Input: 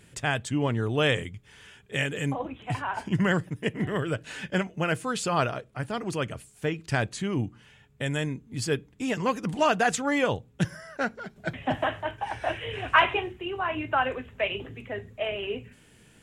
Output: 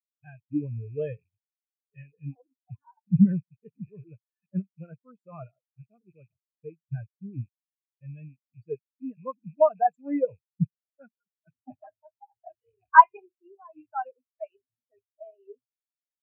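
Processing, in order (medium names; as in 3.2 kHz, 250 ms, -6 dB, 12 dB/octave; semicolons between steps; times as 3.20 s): rattle on loud lows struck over -36 dBFS, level -18 dBFS; spectral contrast expander 4:1; trim +5 dB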